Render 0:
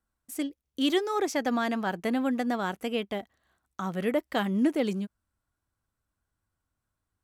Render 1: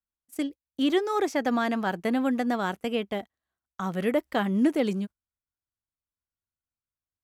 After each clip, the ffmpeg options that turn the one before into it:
-filter_complex "[0:a]agate=range=0.112:threshold=0.0112:ratio=16:detection=peak,acrossover=split=2500[s0][s1];[s1]alimiter=level_in=2.99:limit=0.0631:level=0:latency=1:release=190,volume=0.335[s2];[s0][s2]amix=inputs=2:normalize=0,volume=1.26"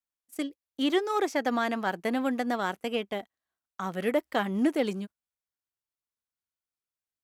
-af "aeval=exprs='0.237*(cos(1*acos(clip(val(0)/0.237,-1,1)))-cos(1*PI/2))+0.00531*(cos(7*acos(clip(val(0)/0.237,-1,1)))-cos(7*PI/2))':c=same,lowshelf=f=160:g=-11"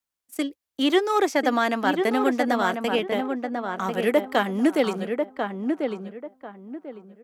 -filter_complex "[0:a]acrossover=split=210|2200[s0][s1][s2];[s0]acompressor=threshold=0.00501:ratio=6[s3];[s3][s1][s2]amix=inputs=3:normalize=0,asplit=2[s4][s5];[s5]adelay=1043,lowpass=f=1600:p=1,volume=0.596,asplit=2[s6][s7];[s7]adelay=1043,lowpass=f=1600:p=1,volume=0.28,asplit=2[s8][s9];[s9]adelay=1043,lowpass=f=1600:p=1,volume=0.28,asplit=2[s10][s11];[s11]adelay=1043,lowpass=f=1600:p=1,volume=0.28[s12];[s4][s6][s8][s10][s12]amix=inputs=5:normalize=0,volume=2"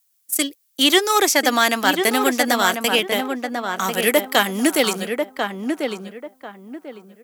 -af "crystalizer=i=7.5:c=0,volume=1.12"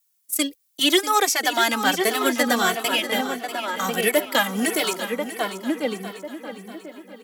-filter_complex "[0:a]asplit=2[s0][s1];[s1]aecho=0:1:642|1284|1926|2568:0.251|0.111|0.0486|0.0214[s2];[s0][s2]amix=inputs=2:normalize=0,asplit=2[s3][s4];[s4]adelay=2.2,afreqshift=-1.5[s5];[s3][s5]amix=inputs=2:normalize=1"

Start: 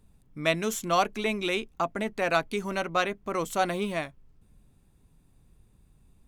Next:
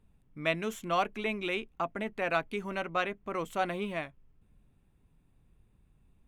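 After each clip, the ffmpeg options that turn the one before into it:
-af "highshelf=f=3700:t=q:w=1.5:g=-7,volume=0.562"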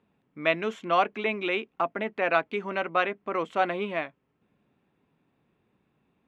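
-af "highpass=250,lowpass=3300,volume=2"

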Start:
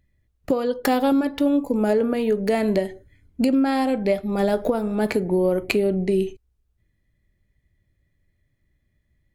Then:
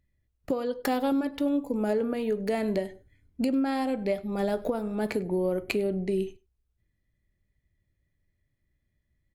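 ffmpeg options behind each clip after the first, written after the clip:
-af "aecho=1:1:99:0.0668,volume=0.447"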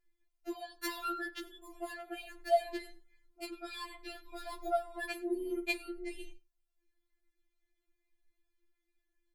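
-af "afftfilt=real='re*4*eq(mod(b,16),0)':imag='im*4*eq(mod(b,16),0)':win_size=2048:overlap=0.75"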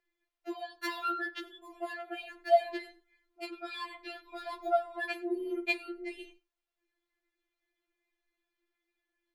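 -filter_complex "[0:a]acrossover=split=300 4500:gain=0.0891 1 0.224[s0][s1][s2];[s0][s1][s2]amix=inputs=3:normalize=0,volume=1.68"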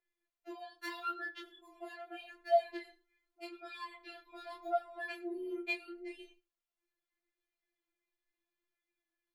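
-af "flanger=delay=19:depth=3.5:speed=0.8,volume=0.668"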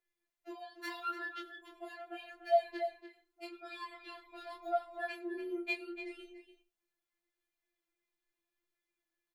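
-filter_complex "[0:a]asplit=2[s0][s1];[s1]adelay=291.5,volume=0.355,highshelf=f=4000:g=-6.56[s2];[s0][s2]amix=inputs=2:normalize=0"

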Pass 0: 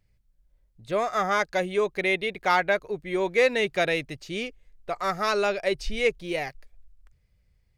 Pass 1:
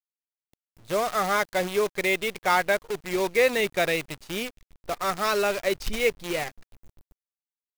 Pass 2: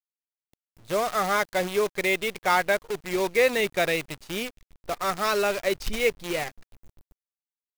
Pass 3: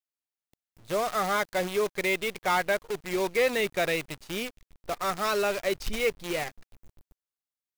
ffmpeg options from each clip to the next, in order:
-af "acrusher=bits=6:dc=4:mix=0:aa=0.000001"
-af anull
-af "asoftclip=type=tanh:threshold=0.178,volume=0.841"

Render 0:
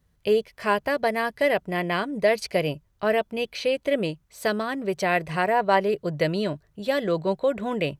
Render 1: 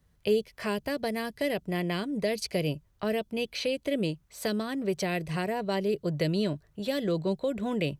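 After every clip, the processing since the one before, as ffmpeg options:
-filter_complex "[0:a]acrossover=split=410|3000[s0][s1][s2];[s1]acompressor=threshold=0.0158:ratio=6[s3];[s0][s3][s2]amix=inputs=3:normalize=0"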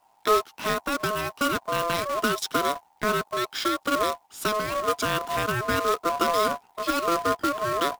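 -af "acrusher=bits=2:mode=log:mix=0:aa=0.000001,aeval=exprs='val(0)*sin(2*PI*850*n/s)':c=same,volume=2.11"

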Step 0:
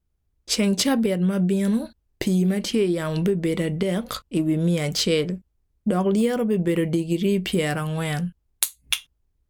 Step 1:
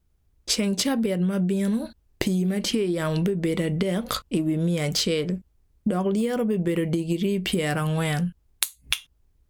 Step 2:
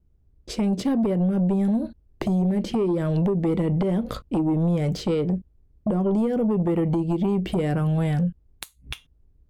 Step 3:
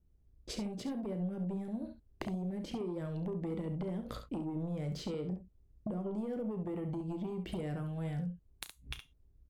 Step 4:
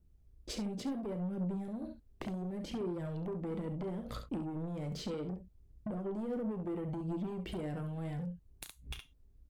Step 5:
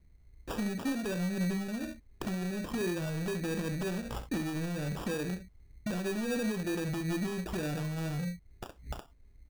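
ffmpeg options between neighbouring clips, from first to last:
-af "acompressor=threshold=0.0398:ratio=6,volume=2.11"
-filter_complex "[0:a]highshelf=f=3500:g=-9.5,acrossover=split=560[s0][s1];[s0]aeval=exprs='0.251*sin(PI/2*2.51*val(0)/0.251)':c=same[s2];[s2][s1]amix=inputs=2:normalize=0,volume=0.473"
-filter_complex "[0:a]acompressor=threshold=0.0316:ratio=6,asplit=2[s0][s1];[s1]aecho=0:1:33|68:0.224|0.355[s2];[s0][s2]amix=inputs=2:normalize=0,volume=0.447"
-af "asoftclip=type=tanh:threshold=0.02,aphaser=in_gain=1:out_gain=1:delay=4.7:decay=0.25:speed=0.7:type=triangular,volume=1.19"
-af "acrusher=samples=21:mix=1:aa=0.000001,volume=1.68"

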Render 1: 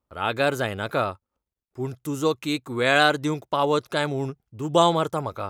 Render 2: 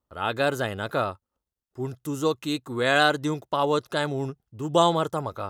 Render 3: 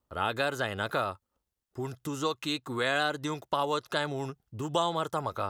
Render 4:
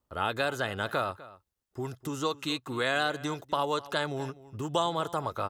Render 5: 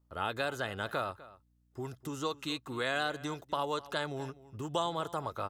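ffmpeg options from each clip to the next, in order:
-af "bandreject=f=2300:w=6.4,volume=0.841"
-filter_complex "[0:a]acrossover=split=740|6300[s0][s1][s2];[s0]acompressor=threshold=0.0141:ratio=4[s3];[s1]acompressor=threshold=0.0282:ratio=4[s4];[s2]acompressor=threshold=0.002:ratio=4[s5];[s3][s4][s5]amix=inputs=3:normalize=0,volume=1.33"
-filter_complex "[0:a]asplit=2[s0][s1];[s1]adelay=250.7,volume=0.126,highshelf=f=4000:g=-5.64[s2];[s0][s2]amix=inputs=2:normalize=0"
-af "aeval=exprs='val(0)+0.000562*(sin(2*PI*60*n/s)+sin(2*PI*2*60*n/s)/2+sin(2*PI*3*60*n/s)/3+sin(2*PI*4*60*n/s)/4+sin(2*PI*5*60*n/s)/5)':c=same,volume=0.596"

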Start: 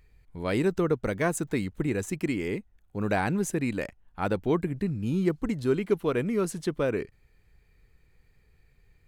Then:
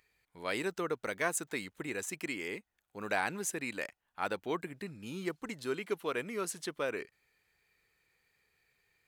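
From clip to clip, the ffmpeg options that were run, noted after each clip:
-af "highpass=f=1200:p=1"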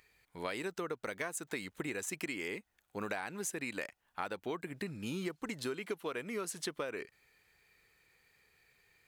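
-af "acompressor=threshold=0.01:ratio=12,volume=1.88"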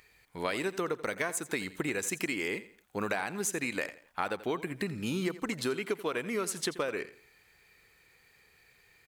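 -af "aecho=1:1:85|170|255:0.158|0.0555|0.0194,volume=2"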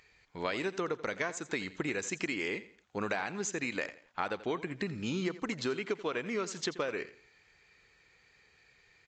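-af "volume=0.841" -ar 16000 -c:a libvorbis -b:a 64k

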